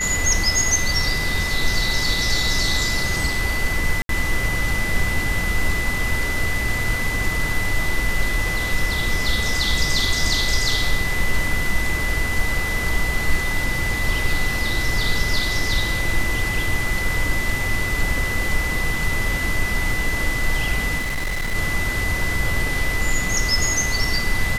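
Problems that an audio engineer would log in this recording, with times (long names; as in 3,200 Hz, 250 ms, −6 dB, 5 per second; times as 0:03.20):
whistle 2,000 Hz −24 dBFS
0:04.02–0:04.09: drop-out 72 ms
0:20.98–0:21.55: clipping −20.5 dBFS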